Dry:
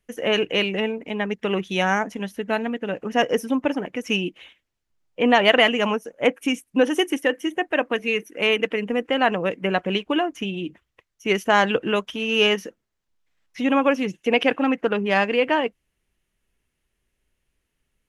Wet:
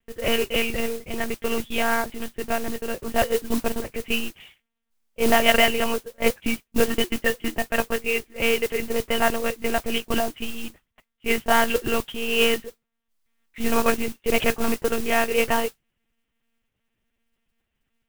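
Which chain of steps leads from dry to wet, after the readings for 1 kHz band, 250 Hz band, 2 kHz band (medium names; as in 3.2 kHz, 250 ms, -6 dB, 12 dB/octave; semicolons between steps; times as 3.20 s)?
-2.0 dB, -4.0 dB, -2.0 dB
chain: monotone LPC vocoder at 8 kHz 230 Hz; modulation noise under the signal 13 dB; trim -1 dB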